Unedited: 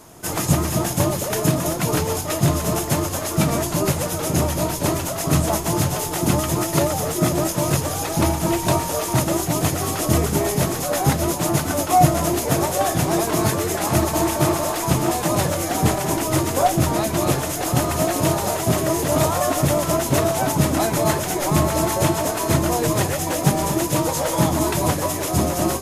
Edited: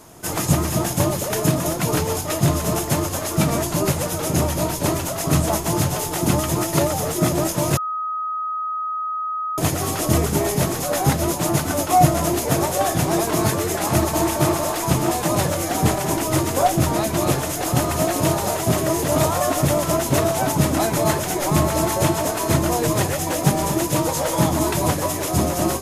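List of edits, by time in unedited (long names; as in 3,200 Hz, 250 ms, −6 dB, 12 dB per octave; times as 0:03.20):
0:07.77–0:09.58: beep over 1,260 Hz −22.5 dBFS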